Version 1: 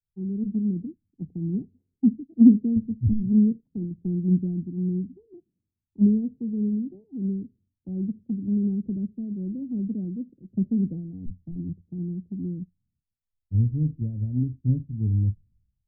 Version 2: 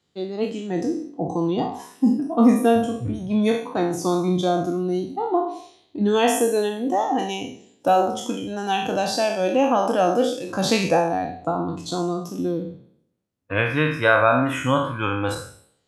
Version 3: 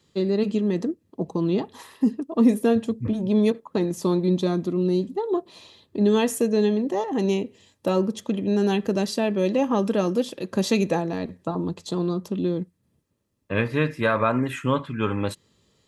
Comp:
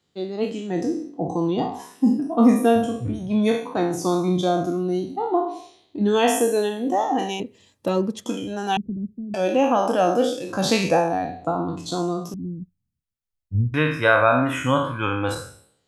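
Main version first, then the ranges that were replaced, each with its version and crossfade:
2
0:07.40–0:08.26: punch in from 3
0:08.77–0:09.34: punch in from 1
0:12.34–0:13.74: punch in from 1

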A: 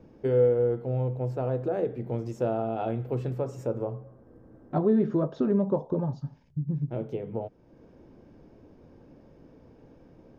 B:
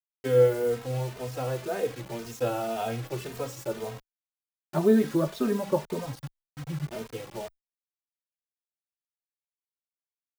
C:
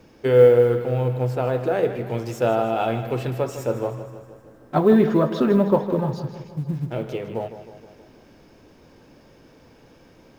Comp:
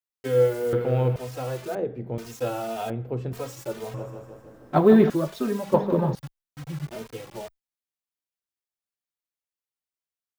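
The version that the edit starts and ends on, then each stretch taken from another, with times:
B
0:00.73–0:01.16: punch in from C
0:01.75–0:02.18: punch in from A
0:02.90–0:03.33: punch in from A
0:03.94–0:05.10: punch in from C
0:05.74–0:06.15: punch in from C

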